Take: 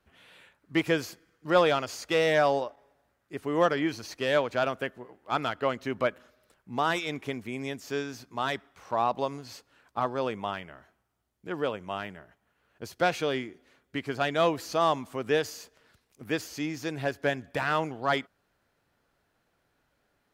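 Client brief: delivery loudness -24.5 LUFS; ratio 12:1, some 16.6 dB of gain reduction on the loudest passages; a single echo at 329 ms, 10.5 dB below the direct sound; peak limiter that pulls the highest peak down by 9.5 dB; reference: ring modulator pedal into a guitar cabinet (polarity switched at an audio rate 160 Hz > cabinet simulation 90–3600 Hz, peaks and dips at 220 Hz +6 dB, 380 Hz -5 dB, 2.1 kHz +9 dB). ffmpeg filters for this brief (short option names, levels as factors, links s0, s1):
-af "acompressor=threshold=0.02:ratio=12,alimiter=level_in=2.11:limit=0.0631:level=0:latency=1,volume=0.473,aecho=1:1:329:0.299,aeval=exprs='val(0)*sgn(sin(2*PI*160*n/s))':c=same,highpass=90,equalizer=f=220:t=q:w=4:g=6,equalizer=f=380:t=q:w=4:g=-5,equalizer=f=2100:t=q:w=4:g=9,lowpass=f=3600:w=0.5412,lowpass=f=3600:w=1.3066,volume=7.5"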